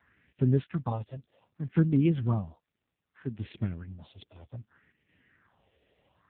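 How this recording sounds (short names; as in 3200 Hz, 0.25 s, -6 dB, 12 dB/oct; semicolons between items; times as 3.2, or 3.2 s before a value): phasing stages 4, 0.64 Hz, lowest notch 200–1100 Hz; chopped level 0.59 Hz, depth 60%, duty 90%; AMR-NB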